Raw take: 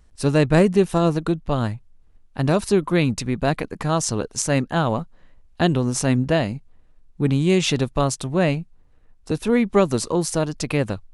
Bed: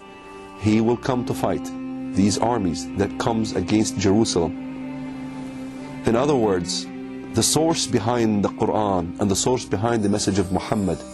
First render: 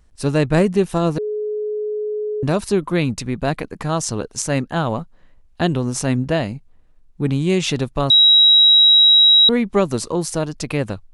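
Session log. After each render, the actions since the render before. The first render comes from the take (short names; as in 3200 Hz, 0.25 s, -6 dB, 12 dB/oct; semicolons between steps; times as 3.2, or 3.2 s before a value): 1.18–2.43 bleep 423 Hz -20.5 dBFS; 8.1–9.49 bleep 3850 Hz -7.5 dBFS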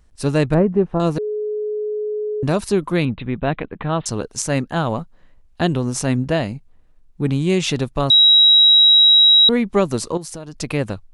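0.54–1 LPF 1100 Hz; 3.05–4.06 steep low-pass 3800 Hz 96 dB/oct; 10.17–10.58 compressor 5:1, threshold -29 dBFS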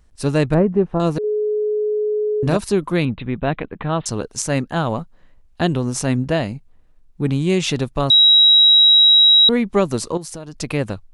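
1.2–2.57 doubler 38 ms -5 dB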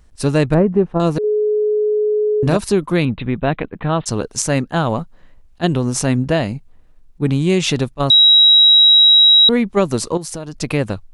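in parallel at -3 dB: compressor, threshold -21 dBFS, peak gain reduction 10.5 dB; on the sum: attack slew limiter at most 600 dB/s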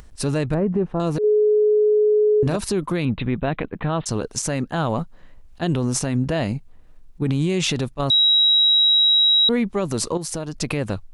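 limiter -12.5 dBFS, peak gain reduction 11 dB; upward compressor, threshold -38 dBFS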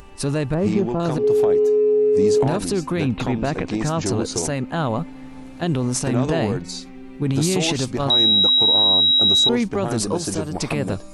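add bed -6.5 dB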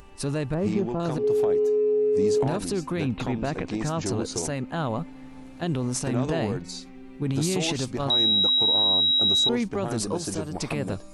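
gain -5.5 dB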